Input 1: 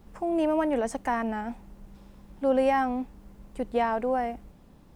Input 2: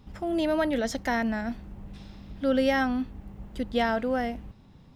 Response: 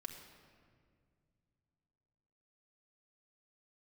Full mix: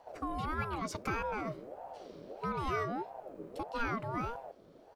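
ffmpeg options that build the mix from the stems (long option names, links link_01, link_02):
-filter_complex "[0:a]volume=-10.5dB[link_01];[1:a]equalizer=frequency=2500:width_type=o:width=0.2:gain=-4.5,acompressor=threshold=-27dB:ratio=6,adelay=0.5,volume=-3.5dB[link_02];[link_01][link_02]amix=inputs=2:normalize=0,bandreject=frequency=3000:width=9.3,aeval=exprs='val(0)*sin(2*PI*550*n/s+550*0.35/1.6*sin(2*PI*1.6*n/s))':channel_layout=same"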